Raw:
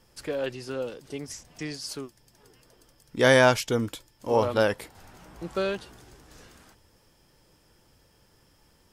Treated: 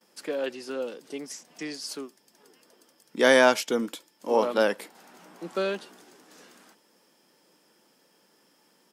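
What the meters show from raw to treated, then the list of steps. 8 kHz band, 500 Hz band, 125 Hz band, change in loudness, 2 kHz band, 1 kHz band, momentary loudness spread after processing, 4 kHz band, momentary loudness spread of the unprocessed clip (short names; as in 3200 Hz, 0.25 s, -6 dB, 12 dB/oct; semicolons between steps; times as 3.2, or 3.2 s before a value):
0.0 dB, 0.0 dB, under -15 dB, 0.0 dB, 0.0 dB, 0.0 dB, 20 LU, 0.0 dB, 20 LU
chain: gate with hold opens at -53 dBFS; steep high-pass 190 Hz 36 dB/oct; speakerphone echo 90 ms, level -28 dB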